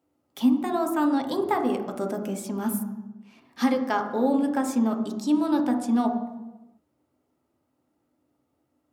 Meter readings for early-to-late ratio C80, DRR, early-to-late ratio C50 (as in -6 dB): 9.5 dB, 3.0 dB, 7.0 dB